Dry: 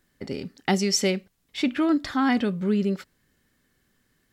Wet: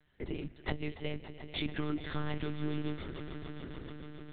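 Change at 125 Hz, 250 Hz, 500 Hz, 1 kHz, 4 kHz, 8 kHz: -5.5 dB, -14.5 dB, -13.5 dB, -15.5 dB, -12.5 dB, under -40 dB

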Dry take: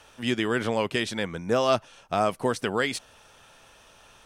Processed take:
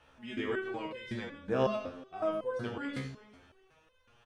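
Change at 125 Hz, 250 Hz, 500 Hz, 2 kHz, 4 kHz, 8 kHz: -7.5 dB, -8.5 dB, -8.0 dB, -11.0 dB, -15.0 dB, under -20 dB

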